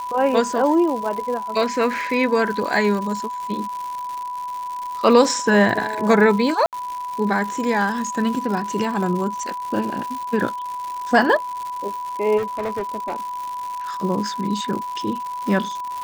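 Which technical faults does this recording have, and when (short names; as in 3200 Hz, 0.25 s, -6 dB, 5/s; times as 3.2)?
crackle 200/s -27 dBFS
tone 990 Hz -26 dBFS
6.66–6.73 gap 68 ms
12.37–13.2 clipped -21 dBFS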